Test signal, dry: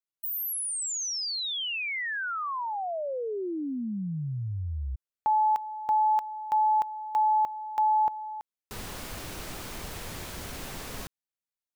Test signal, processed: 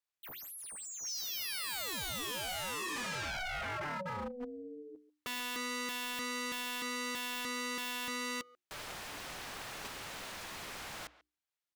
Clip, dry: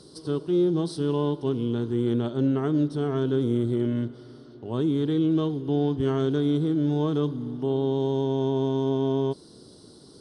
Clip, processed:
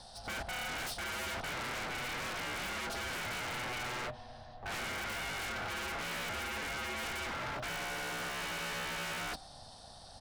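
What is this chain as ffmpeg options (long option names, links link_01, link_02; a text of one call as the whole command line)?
ffmpeg -i in.wav -filter_complex "[0:a]asplit=2[link_01][link_02];[link_02]highpass=frequency=720:poles=1,volume=30dB,asoftclip=type=tanh:threshold=-14dB[link_03];[link_01][link_03]amix=inputs=2:normalize=0,lowpass=frequency=2900:poles=1,volume=-6dB,aeval=exprs='val(0)*sin(2*PI*370*n/s)':channel_layout=same,highshelf=frequency=3400:gain=3,bandreject=frequency=60:width_type=h:width=6,bandreject=frequency=120:width_type=h:width=6,bandreject=frequency=180:width_type=h:width=6,bandreject=frequency=240:width_type=h:width=6,bandreject=frequency=300:width_type=h:width=6,bandreject=frequency=360:width_type=h:width=6,asplit=2[link_04][link_05];[link_05]adelay=140,highpass=300,lowpass=3400,asoftclip=type=hard:threshold=-24dB,volume=-17dB[link_06];[link_04][link_06]amix=inputs=2:normalize=0,agate=range=-13dB:threshold=-25dB:ratio=16:release=126:detection=rms,aeval=exprs='0.0299*(abs(mod(val(0)/0.0299+3,4)-2)-1)':channel_layout=same,volume=-3.5dB" out.wav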